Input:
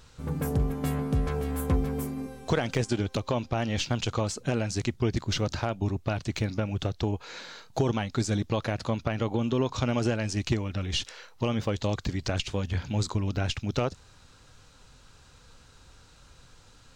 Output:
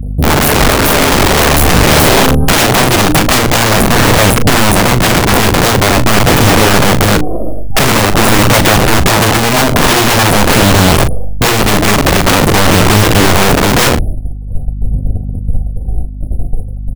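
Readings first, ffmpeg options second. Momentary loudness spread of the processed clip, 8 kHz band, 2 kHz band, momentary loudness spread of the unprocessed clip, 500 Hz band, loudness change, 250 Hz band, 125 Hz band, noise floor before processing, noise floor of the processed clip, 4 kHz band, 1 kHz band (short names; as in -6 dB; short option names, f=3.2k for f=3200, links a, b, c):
13 LU, +27.5 dB, +27.5 dB, 4 LU, +20.0 dB, +21.5 dB, +19.0 dB, +17.5 dB, -55 dBFS, -19 dBFS, +24.0 dB, +26.0 dB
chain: -filter_complex "[0:a]bandreject=f=60:t=h:w=6,bandreject=f=120:t=h:w=6,bandreject=f=180:t=h:w=6,bandreject=f=240:t=h:w=6,bandreject=f=300:t=h:w=6,afftfilt=real='re*(1-between(b*sr/4096,790,9400))':imag='im*(1-between(b*sr/4096,790,9400))':win_size=4096:overlap=0.75,agate=range=-34dB:threshold=-53dB:ratio=16:detection=peak,asubboost=boost=2:cutoff=230,acrossover=split=7400[a][b];[a]dynaudnorm=f=250:g=5:m=5dB[c];[c][b]amix=inputs=2:normalize=0,aeval=exprs='val(0)+0.00224*(sin(2*PI*50*n/s)+sin(2*PI*2*50*n/s)/2+sin(2*PI*3*50*n/s)/3+sin(2*PI*4*50*n/s)/4+sin(2*PI*5*50*n/s)/5)':c=same,aeval=exprs='(tanh(28.2*val(0)+0.7)-tanh(0.7))/28.2':c=same,aphaser=in_gain=1:out_gain=1:delay=3.2:decay=0.46:speed=0.46:type=sinusoidal,asplit=2[d][e];[e]acrusher=bits=3:mix=0:aa=0.5,volume=-11dB[f];[d][f]amix=inputs=2:normalize=0,aeval=exprs='(mod(39.8*val(0)+1,2)-1)/39.8':c=same,asplit=2[g][h];[h]adelay=39,volume=-12dB[i];[g][i]amix=inputs=2:normalize=0,alimiter=level_in=34.5dB:limit=-1dB:release=50:level=0:latency=1,volume=-1dB"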